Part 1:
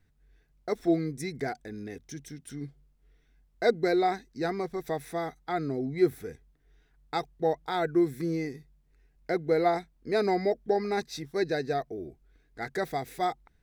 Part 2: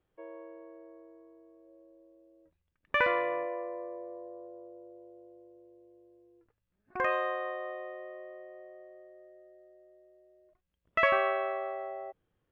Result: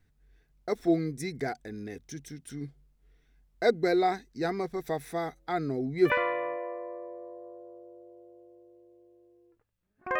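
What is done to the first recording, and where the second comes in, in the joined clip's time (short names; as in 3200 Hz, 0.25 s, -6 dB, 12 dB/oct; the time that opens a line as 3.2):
part 1
5.19 add part 2 from 2.08 s 0.91 s -12 dB
6.1 switch to part 2 from 2.99 s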